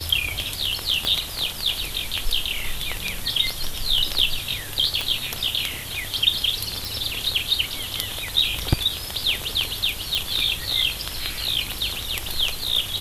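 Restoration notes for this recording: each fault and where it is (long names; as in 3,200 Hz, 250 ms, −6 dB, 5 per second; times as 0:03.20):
0:01.05: click −9 dBFS
0:05.01: click
0:06.85: click
0:10.15: click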